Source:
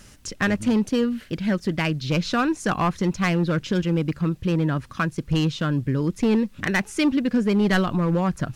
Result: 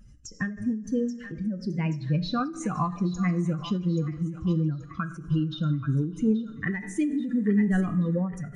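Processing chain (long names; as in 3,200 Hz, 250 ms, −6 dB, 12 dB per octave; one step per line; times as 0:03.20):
expanding power law on the bin magnitudes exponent 2.2
on a send: feedback echo with a high-pass in the loop 830 ms, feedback 49%, high-pass 1,200 Hz, level −10.5 dB
on the sum: coupled-rooms reverb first 0.52 s, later 3.7 s, from −21 dB, DRR 8 dB
every ending faded ahead of time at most 110 dB per second
level −3 dB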